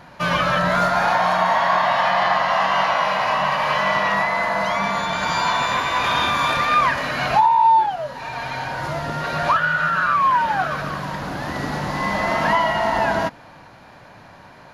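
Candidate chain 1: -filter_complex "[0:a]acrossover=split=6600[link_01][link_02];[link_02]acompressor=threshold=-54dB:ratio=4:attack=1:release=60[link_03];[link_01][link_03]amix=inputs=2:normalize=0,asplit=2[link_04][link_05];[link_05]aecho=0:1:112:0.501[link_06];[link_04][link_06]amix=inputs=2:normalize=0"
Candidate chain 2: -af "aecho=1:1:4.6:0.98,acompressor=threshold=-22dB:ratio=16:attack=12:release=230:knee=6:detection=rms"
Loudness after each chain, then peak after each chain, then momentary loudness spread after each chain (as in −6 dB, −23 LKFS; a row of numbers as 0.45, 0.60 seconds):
−18.5, −26.0 LKFS; −5.0, −14.0 dBFS; 10, 4 LU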